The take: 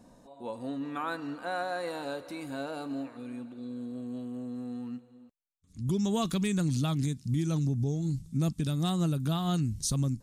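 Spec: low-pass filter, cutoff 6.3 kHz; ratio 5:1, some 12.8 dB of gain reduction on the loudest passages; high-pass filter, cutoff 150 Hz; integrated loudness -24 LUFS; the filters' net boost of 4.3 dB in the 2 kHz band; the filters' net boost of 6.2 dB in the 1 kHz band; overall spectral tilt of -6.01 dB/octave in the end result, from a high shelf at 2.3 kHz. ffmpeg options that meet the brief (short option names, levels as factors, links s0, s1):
-af "highpass=150,lowpass=6300,equalizer=f=1000:t=o:g=8.5,equalizer=f=2000:t=o:g=4,highshelf=f=2300:g=-4,acompressor=threshold=0.0126:ratio=5,volume=7.5"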